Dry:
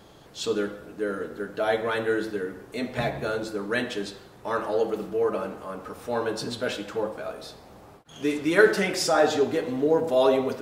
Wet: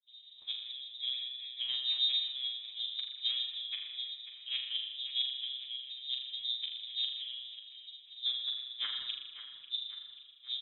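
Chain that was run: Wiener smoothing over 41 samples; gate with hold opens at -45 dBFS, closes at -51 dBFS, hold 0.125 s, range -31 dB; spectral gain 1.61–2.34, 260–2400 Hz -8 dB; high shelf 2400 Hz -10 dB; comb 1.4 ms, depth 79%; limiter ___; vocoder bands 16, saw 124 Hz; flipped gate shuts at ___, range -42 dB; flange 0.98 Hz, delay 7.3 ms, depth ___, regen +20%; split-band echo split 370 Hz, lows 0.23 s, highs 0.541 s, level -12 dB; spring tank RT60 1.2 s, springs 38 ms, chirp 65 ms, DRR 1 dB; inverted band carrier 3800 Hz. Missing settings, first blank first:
-15 dBFS, -21 dBFS, 5.7 ms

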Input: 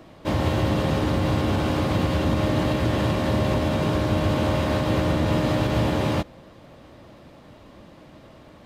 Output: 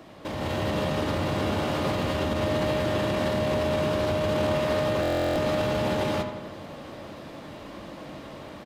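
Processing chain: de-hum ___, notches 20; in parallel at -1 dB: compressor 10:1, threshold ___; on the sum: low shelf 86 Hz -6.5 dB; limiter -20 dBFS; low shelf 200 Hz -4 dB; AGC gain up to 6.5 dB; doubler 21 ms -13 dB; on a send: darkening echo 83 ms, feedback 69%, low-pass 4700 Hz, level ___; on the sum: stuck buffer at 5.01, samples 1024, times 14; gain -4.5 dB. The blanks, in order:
124.5 Hz, -35 dBFS, -9.5 dB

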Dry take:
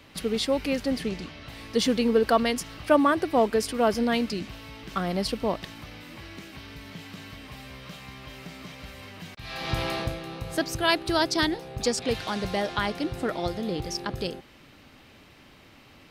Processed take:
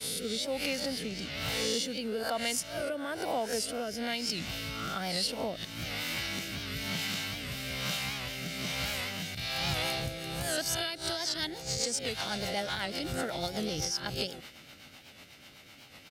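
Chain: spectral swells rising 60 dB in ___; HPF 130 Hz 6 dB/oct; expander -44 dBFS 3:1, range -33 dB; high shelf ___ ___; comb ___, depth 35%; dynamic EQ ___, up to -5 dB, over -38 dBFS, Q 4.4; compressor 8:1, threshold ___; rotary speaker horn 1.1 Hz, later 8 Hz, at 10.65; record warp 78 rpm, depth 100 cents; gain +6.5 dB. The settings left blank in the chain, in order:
0.54 s, 2500 Hz, +10 dB, 1.4 ms, 1200 Hz, -35 dBFS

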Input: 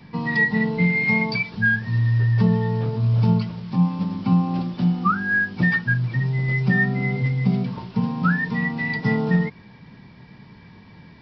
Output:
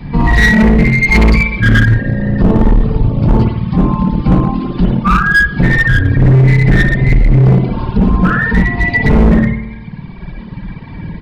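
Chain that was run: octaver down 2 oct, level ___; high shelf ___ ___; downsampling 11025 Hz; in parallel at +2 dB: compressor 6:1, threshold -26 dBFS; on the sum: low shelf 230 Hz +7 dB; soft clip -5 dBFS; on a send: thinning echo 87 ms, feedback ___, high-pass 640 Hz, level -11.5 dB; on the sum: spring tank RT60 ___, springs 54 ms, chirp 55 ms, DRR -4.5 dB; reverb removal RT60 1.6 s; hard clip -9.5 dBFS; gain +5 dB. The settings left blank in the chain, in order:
-1 dB, 4100 Hz, -7 dB, 52%, 1.2 s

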